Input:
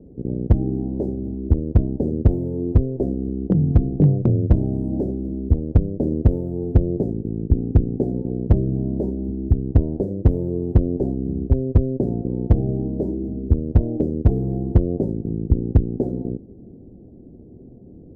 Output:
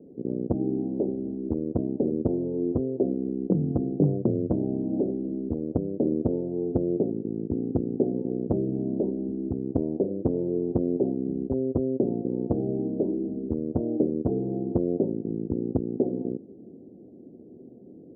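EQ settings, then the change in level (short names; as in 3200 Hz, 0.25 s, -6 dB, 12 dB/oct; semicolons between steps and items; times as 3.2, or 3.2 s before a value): Gaussian blur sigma 10 samples; HPF 270 Hz 12 dB/oct; +1.5 dB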